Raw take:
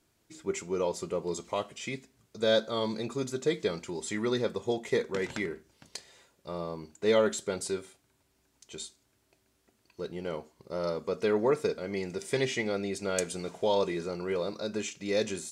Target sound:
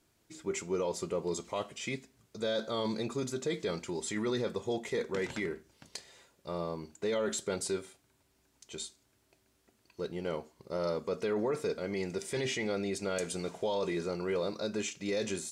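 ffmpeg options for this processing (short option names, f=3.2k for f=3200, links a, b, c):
-af "alimiter=level_in=0.5dB:limit=-24dB:level=0:latency=1:release=11,volume=-0.5dB"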